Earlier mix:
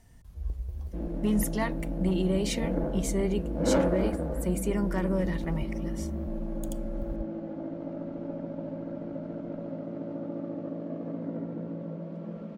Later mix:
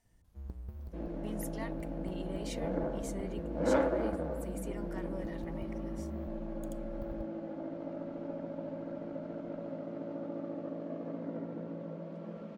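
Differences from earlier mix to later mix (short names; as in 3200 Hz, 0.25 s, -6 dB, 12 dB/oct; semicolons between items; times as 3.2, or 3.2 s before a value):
speech -11.5 dB; first sound: remove fixed phaser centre 540 Hz, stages 4; master: add low shelf 310 Hz -9 dB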